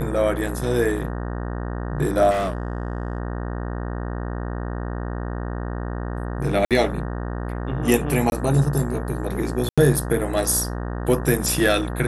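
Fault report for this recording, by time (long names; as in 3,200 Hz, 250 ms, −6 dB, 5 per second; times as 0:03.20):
mains buzz 60 Hz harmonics 31 −28 dBFS
0:02.30–0:03.18: clipping −20 dBFS
0:06.65–0:06.71: drop-out 57 ms
0:08.30–0:08.32: drop-out 21 ms
0:09.69–0:09.78: drop-out 86 ms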